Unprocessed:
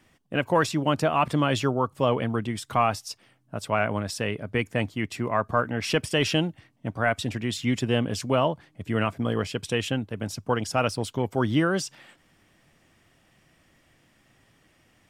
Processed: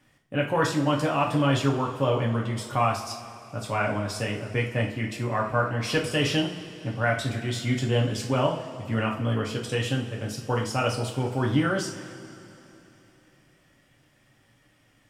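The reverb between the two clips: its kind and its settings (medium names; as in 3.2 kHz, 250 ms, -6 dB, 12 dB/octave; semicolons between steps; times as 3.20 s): two-slope reverb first 0.38 s, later 3.3 s, from -18 dB, DRR -1.5 dB; trim -4.5 dB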